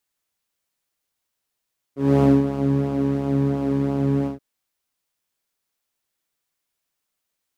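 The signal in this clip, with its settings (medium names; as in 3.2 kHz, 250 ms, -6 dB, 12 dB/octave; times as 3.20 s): synth patch with pulse-width modulation C#3, oscillator 2 saw, interval 0 st, detune 19 cents, noise -5 dB, filter bandpass, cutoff 180 Hz, Q 1.4, filter envelope 1 oct, filter decay 0.28 s, attack 269 ms, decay 0.20 s, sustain -9.5 dB, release 0.13 s, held 2.30 s, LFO 2.9 Hz, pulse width 14%, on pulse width 7%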